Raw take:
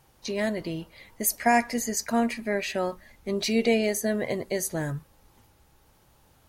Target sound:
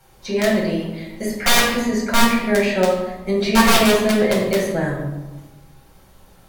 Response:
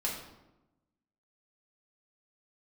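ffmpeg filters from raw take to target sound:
-filter_complex "[0:a]bandreject=f=890:w=24,acrossover=split=130|530|3500[a][b][c][d];[d]acompressor=threshold=-48dB:ratio=6[e];[a][b][c][e]amix=inputs=4:normalize=0,aeval=exprs='(mod(7.08*val(0)+1,2)-1)/7.08':c=same[f];[1:a]atrim=start_sample=2205,asetrate=38367,aresample=44100[g];[f][g]afir=irnorm=-1:irlink=0,volume=4.5dB"

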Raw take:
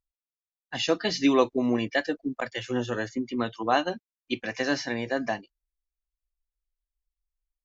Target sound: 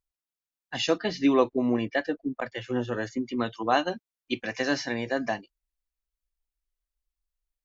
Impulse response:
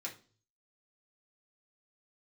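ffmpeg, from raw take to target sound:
-filter_complex "[0:a]asettb=1/sr,asplit=3[a][b][c];[a]atrim=end=0.984[d];[b]atrim=start=0.98:end=3.03,asetpts=PTS-STARTPTS,afade=t=in:d=0.004:c=qsin,afade=t=out:st=2.046:d=0.004:c=qsin,aemphasis=mode=reproduction:type=75kf[e];[c]atrim=start=3.026[f];[d][e]acrossfade=d=0.004:c1=hsin:c2=qsin[g];[g][f]acrossfade=d=0.004:c1=qsin:c2=hsin"

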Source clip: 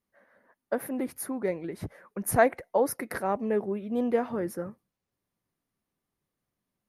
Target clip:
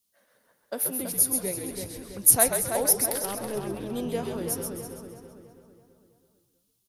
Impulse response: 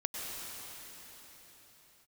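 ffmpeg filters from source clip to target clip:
-filter_complex "[0:a]bandreject=f=148.8:t=h:w=4,bandreject=f=297.6:t=h:w=4,bandreject=f=446.4:t=h:w=4,bandreject=f=595.2:t=h:w=4,bandreject=f=744:t=h:w=4,bandreject=f=892.8:t=h:w=4,bandreject=f=1.0416k:t=h:w=4,bandreject=f=1.1904k:t=h:w=4,bandreject=f=1.3392k:t=h:w=4,bandreject=f=1.488k:t=h:w=4,bandreject=f=1.6368k:t=h:w=4,bandreject=f=1.7856k:t=h:w=4,bandreject=f=1.9344k:t=h:w=4,bandreject=f=2.0832k:t=h:w=4,bandreject=f=2.232k:t=h:w=4,bandreject=f=2.3808k:t=h:w=4,bandreject=f=2.5296k:t=h:w=4,bandreject=f=2.6784k:t=h:w=4,bandreject=f=2.8272k:t=h:w=4,bandreject=f=2.976k:t=h:w=4,bandreject=f=3.1248k:t=h:w=4,bandreject=f=3.2736k:t=h:w=4,bandreject=f=3.4224k:t=h:w=4,bandreject=f=3.5712k:t=h:w=4,bandreject=f=3.72k:t=h:w=4,bandreject=f=3.8688k:t=h:w=4,bandreject=f=4.0176k:t=h:w=4,bandreject=f=4.1664k:t=h:w=4,bandreject=f=4.3152k:t=h:w=4,bandreject=f=4.464k:t=h:w=4,bandreject=f=4.6128k:t=h:w=4,bandreject=f=4.7616k:t=h:w=4,bandreject=f=4.9104k:t=h:w=4,bandreject=f=5.0592k:t=h:w=4,bandreject=f=5.208k:t=h:w=4,bandreject=f=5.3568k:t=h:w=4,bandreject=f=5.5056k:t=h:w=4,bandreject=f=5.6544k:t=h:w=4,bandreject=f=5.8032k:t=h:w=4,bandreject=f=5.952k:t=h:w=4,asplit=2[a][b];[b]asplit=5[c][d][e][f][g];[c]adelay=132,afreqshift=-74,volume=-5.5dB[h];[d]adelay=264,afreqshift=-148,volume=-13.9dB[i];[e]adelay=396,afreqshift=-222,volume=-22.3dB[j];[f]adelay=528,afreqshift=-296,volume=-30.7dB[k];[g]adelay=660,afreqshift=-370,volume=-39.1dB[l];[h][i][j][k][l]amix=inputs=5:normalize=0[m];[a][m]amix=inputs=2:normalize=0,asettb=1/sr,asplit=3[n][o][p];[n]atrim=end=3.104[q];[o]atrim=start=3.1:end=3.57,asetpts=PTS-STARTPTS,afade=t=in:d=0.004:c=qsin,afade=t=out:st=0.466:d=0.004:c=qsin,aeval=exprs='(tanh(10*val(0)+0.55)-tanh(0.55))/10':c=same[r];[p]atrim=start=3.566[s];[q][r]acrossfade=d=0.004:c1=hsin:c2=qsin[t];[t][s]acrossfade=d=0.004:c1=qsin:c2=hsin,asplit=2[u][v];[v]adelay=328,lowpass=f=3.8k:p=1,volume=-6dB,asplit=2[w][x];[x]adelay=328,lowpass=f=3.8k:p=1,volume=0.49,asplit=2[y][z];[z]adelay=328,lowpass=f=3.8k:p=1,volume=0.49,asplit=2[aa][ab];[ab]adelay=328,lowpass=f=3.8k:p=1,volume=0.49,asplit=2[ac][ad];[ad]adelay=328,lowpass=f=3.8k:p=1,volume=0.49,asplit=2[ae][af];[af]adelay=328,lowpass=f=3.8k:p=1,volume=0.49[ag];[w][y][aa][ac][ae][ag]amix=inputs=6:normalize=0[ah];[u][ah]amix=inputs=2:normalize=0,aexciter=amount=6.9:drive=5.8:freq=2.8k,volume=-5dB"

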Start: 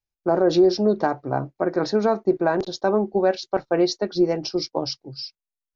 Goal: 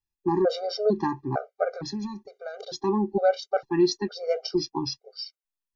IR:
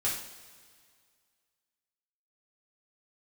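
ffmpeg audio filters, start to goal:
-filter_complex "[0:a]asettb=1/sr,asplit=3[a][b][c];[a]atrim=end=1.704[d];[b]atrim=start=1.7:end=2.61,asetpts=PTS-STARTPTS,afade=t=in:d=0.004:c=qsin,afade=t=out:st=0.906:d=0.004:c=qsin,acrossover=split=180|3000[e][f][g];[f]acompressor=threshold=-33dB:ratio=5[h];[e][h][g]amix=inputs=3:normalize=0[i];[c]atrim=start=2.606[j];[d][i]acrossfade=d=0.004:c1=hsin:c2=qsin[k];[k][j]acrossfade=d=0.004:c1=qsin:c2=hsin,afftfilt=real='re*gt(sin(2*PI*1.1*pts/sr)*(1-2*mod(floor(b*sr/1024/400),2)),0)':imag='im*gt(sin(2*PI*1.1*pts/sr)*(1-2*mod(floor(b*sr/1024/400),2)),0)':win_size=1024:overlap=0.75"

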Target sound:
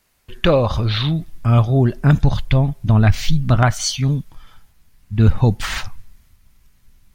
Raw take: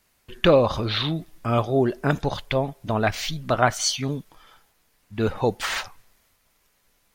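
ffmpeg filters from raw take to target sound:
-af "asubboost=boost=11:cutoff=160,volume=2dB"

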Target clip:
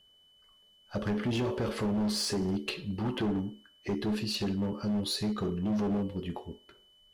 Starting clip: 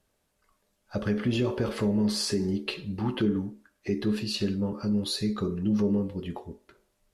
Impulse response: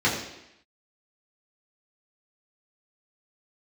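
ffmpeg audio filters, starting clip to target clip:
-af "aeval=exprs='val(0)+0.00112*sin(2*PI*3000*n/s)':c=same,acontrast=43,asoftclip=type=hard:threshold=-19.5dB,volume=-7dB"

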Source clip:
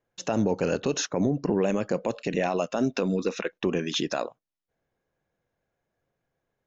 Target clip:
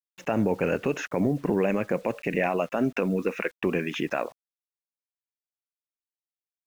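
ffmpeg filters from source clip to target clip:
-af "highshelf=f=3.1k:t=q:w=3:g=-10,acrusher=bits=8:mix=0:aa=0.000001"

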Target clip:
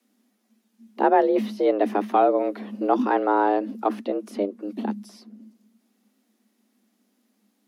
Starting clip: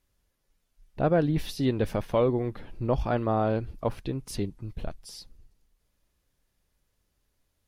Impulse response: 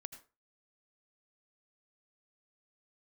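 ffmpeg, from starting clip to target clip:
-filter_complex "[0:a]acrossover=split=350|470|2400[a][b][c][d];[d]acompressor=threshold=-58dB:ratio=4[e];[a][b][c][e]amix=inputs=4:normalize=0,afreqshift=200,volume=5dB"

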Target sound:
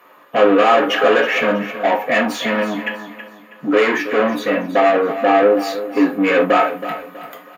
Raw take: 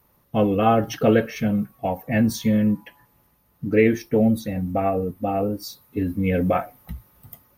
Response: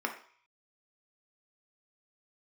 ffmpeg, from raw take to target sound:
-filter_complex "[0:a]asplit=2[a][b];[b]highpass=f=720:p=1,volume=30dB,asoftclip=type=tanh:threshold=-4.5dB[c];[a][c]amix=inputs=2:normalize=0,lowpass=f=2.2k:p=1,volume=-6dB,lowshelf=f=450:g=-4,aecho=1:1:323|646|969|1292:0.251|0.0879|0.0308|0.0108[d];[1:a]atrim=start_sample=2205,atrim=end_sample=4410,asetrate=57330,aresample=44100[e];[d][e]afir=irnorm=-1:irlink=0,volume=-3.5dB"

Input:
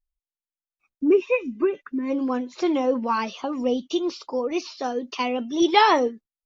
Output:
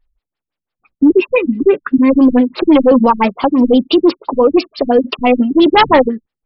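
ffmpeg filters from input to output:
-af "apsyclip=22dB,afftfilt=real='re*lt(b*sr/1024,200*pow(5600/200,0.5+0.5*sin(2*PI*5.9*pts/sr)))':imag='im*lt(b*sr/1024,200*pow(5600/200,0.5+0.5*sin(2*PI*5.9*pts/sr)))':win_size=1024:overlap=0.75,volume=-3dB"

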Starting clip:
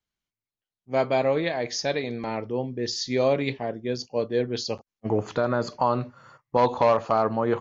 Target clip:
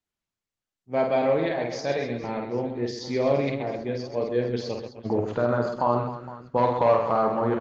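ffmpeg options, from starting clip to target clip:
-filter_complex "[0:a]lowpass=f=2.7k:p=1,asplit=2[a][b];[b]aecho=0:1:50|130|258|462.8|790.5:0.631|0.398|0.251|0.158|0.1[c];[a][c]amix=inputs=2:normalize=0,volume=-1.5dB" -ar 48000 -c:a libopus -b:a 20k

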